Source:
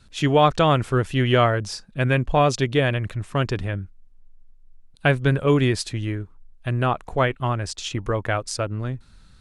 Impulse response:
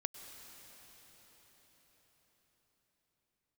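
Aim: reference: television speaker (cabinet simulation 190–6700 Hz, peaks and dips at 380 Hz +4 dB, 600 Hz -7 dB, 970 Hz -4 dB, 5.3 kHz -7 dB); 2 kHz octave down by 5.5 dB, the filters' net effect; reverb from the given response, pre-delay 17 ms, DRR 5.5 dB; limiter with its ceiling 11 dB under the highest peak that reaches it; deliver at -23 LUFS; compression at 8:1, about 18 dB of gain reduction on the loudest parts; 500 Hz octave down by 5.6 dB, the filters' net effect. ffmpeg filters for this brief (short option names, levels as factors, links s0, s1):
-filter_complex "[0:a]equalizer=f=500:t=o:g=-6,equalizer=f=2000:t=o:g=-6.5,acompressor=threshold=0.0178:ratio=8,alimiter=level_in=2.11:limit=0.0631:level=0:latency=1,volume=0.473,asplit=2[s0][s1];[1:a]atrim=start_sample=2205,adelay=17[s2];[s1][s2]afir=irnorm=-1:irlink=0,volume=0.596[s3];[s0][s3]amix=inputs=2:normalize=0,highpass=f=190:w=0.5412,highpass=f=190:w=1.3066,equalizer=f=380:t=q:w=4:g=4,equalizer=f=600:t=q:w=4:g=-7,equalizer=f=970:t=q:w=4:g=-4,equalizer=f=5300:t=q:w=4:g=-7,lowpass=f=6700:w=0.5412,lowpass=f=6700:w=1.3066,volume=11.2"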